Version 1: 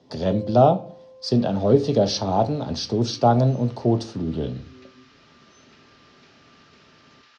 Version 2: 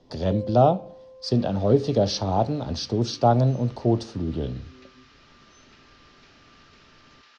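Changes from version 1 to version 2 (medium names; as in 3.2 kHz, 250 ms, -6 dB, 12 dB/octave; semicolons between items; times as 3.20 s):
speech: send -10.0 dB; master: remove high-pass 94 Hz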